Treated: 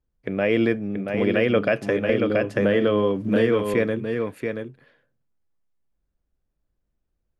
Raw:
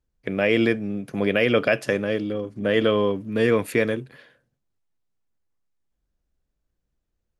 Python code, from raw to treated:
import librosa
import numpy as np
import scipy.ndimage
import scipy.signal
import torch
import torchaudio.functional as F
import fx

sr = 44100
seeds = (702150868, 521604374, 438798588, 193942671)

y = fx.high_shelf(x, sr, hz=2900.0, db=-10.0)
y = y + 10.0 ** (-6.0 / 20.0) * np.pad(y, (int(680 * sr / 1000.0), 0))[:len(y)]
y = fx.band_squash(y, sr, depth_pct=100, at=(2.09, 3.74))